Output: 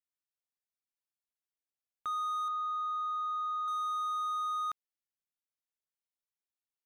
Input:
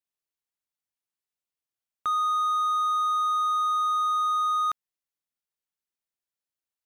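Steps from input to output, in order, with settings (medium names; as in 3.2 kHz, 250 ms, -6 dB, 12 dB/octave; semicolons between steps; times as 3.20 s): 2.48–3.68 s: Bessel low-pass 2.5 kHz, order 2; trim -9 dB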